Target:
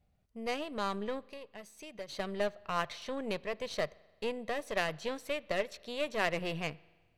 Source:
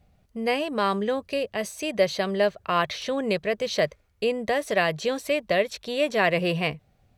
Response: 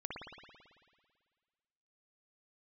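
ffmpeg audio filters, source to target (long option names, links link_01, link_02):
-filter_complex "[0:a]aeval=exprs='0.398*(cos(1*acos(clip(val(0)/0.398,-1,1)))-cos(1*PI/2))+0.0631*(cos(3*acos(clip(val(0)/0.398,-1,1)))-cos(3*PI/2))+0.0158*(cos(8*acos(clip(val(0)/0.398,-1,1)))-cos(8*PI/2))':channel_layout=same,asplit=3[link_01][link_02][link_03];[link_01]afade=type=out:start_time=1.22:duration=0.02[link_04];[link_02]acompressor=threshold=-44dB:ratio=2,afade=type=in:start_time=1.22:duration=0.02,afade=type=out:start_time=2.08:duration=0.02[link_05];[link_03]afade=type=in:start_time=2.08:duration=0.02[link_06];[link_04][link_05][link_06]amix=inputs=3:normalize=0,asplit=2[link_07][link_08];[1:a]atrim=start_sample=2205,asetrate=57330,aresample=44100[link_09];[link_08][link_09]afir=irnorm=-1:irlink=0,volume=-19dB[link_10];[link_07][link_10]amix=inputs=2:normalize=0,volume=-7dB"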